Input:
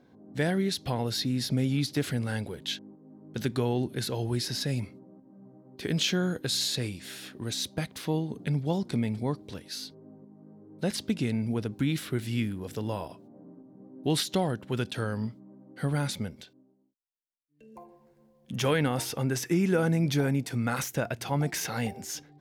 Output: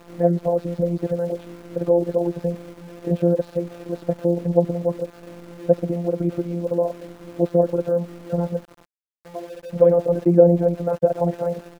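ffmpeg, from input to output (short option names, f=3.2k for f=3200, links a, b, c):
-filter_complex "[0:a]aeval=exprs='val(0)+0.5*0.00891*sgn(val(0))':c=same,anlmdn=0.631,highpass=52,lowshelf=f=310:g=-4.5,bandreject=f=400:w=12,asplit=2[a][b];[b]alimiter=limit=-24dB:level=0:latency=1:release=121,volume=-1.5dB[c];[a][c]amix=inputs=2:normalize=0,afftfilt=real='hypot(re,im)*cos(PI*b)':imag='0':win_size=1024:overlap=0.75,lowpass=f=560:t=q:w=4.9,aeval=exprs='val(0)*gte(abs(val(0)),0.00501)':c=same,atempo=1.9,volume=6dB"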